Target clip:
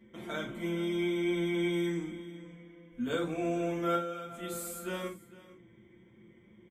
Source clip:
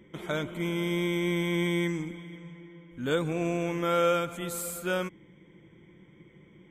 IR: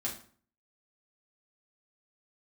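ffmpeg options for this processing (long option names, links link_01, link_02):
-filter_complex "[0:a]asettb=1/sr,asplit=3[link_01][link_02][link_03];[link_01]atrim=end=0.694[link_04];[link_02]atrim=start=0.69:end=1.73,asetpts=PTS-STARTPTS,afade=type=in:duration=0.004:curve=qsin,afade=type=out:start_time=1.036:duration=0.004:curve=qsin,highshelf=frequency=11000:gain=-10.5[link_05];[link_03]atrim=start=1.726[link_06];[link_04][link_05]acrossfade=duration=0.004:curve1=hsin:curve2=qsin[link_07];[link_07][link_06]acrossfade=duration=0.004:curve1=qsin:curve2=hsin,asettb=1/sr,asplit=3[link_08][link_09][link_10];[link_08]atrim=end=2.434[link_11];[link_09]atrim=start=2.43:end=3.07,asetpts=PTS-STARTPTS,afade=type=in:duration=0.004:curve=qsin,afade=type=out:start_time=0.636:duration=0.004:curve=qsin,aecho=1:1:4.1:0.65,atrim=end_sample=28224[link_12];[link_10]atrim=start=3.066[link_13];[link_11][link_12]acrossfade=duration=0.004:curve1=hsin:curve2=qsin[link_14];[link_14][link_13]acrossfade=duration=0.004:curve1=qsin:curve2=hsin,asettb=1/sr,asplit=3[link_15][link_16][link_17];[link_15]atrim=end=3.954[link_18];[link_16]atrim=start=3.95:end=4.43,asetpts=PTS-STARTPTS,afade=type=in:duration=0.004:curve=qsin,afade=type=out:start_time=0.476:duration=0.004:curve=qsin,acompressor=threshold=-36dB:ratio=4[link_19];[link_17]atrim=start=4.426[link_20];[link_18][link_19]acrossfade=duration=0.004:curve1=hsin:curve2=qsin[link_21];[link_21][link_20]acrossfade=duration=0.004:curve1=qsin:curve2=hsin,aecho=1:1:450:0.112[link_22];[1:a]atrim=start_sample=2205,atrim=end_sample=4410[link_23];[link_22][link_23]afir=irnorm=-1:irlink=0,volume=-7dB"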